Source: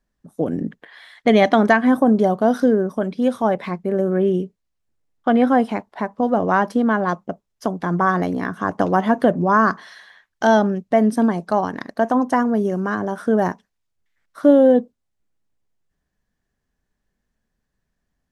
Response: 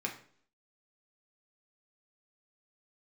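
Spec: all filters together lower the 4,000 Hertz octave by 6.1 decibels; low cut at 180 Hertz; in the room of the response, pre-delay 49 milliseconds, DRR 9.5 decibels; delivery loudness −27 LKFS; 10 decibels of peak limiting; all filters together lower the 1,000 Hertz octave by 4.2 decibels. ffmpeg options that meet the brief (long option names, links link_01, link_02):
-filter_complex "[0:a]highpass=180,equalizer=frequency=1000:width_type=o:gain=-5.5,equalizer=frequency=4000:width_type=o:gain=-8,alimiter=limit=-14dB:level=0:latency=1,asplit=2[link_01][link_02];[1:a]atrim=start_sample=2205,adelay=49[link_03];[link_02][link_03]afir=irnorm=-1:irlink=0,volume=-12.5dB[link_04];[link_01][link_04]amix=inputs=2:normalize=0,volume=-3dB"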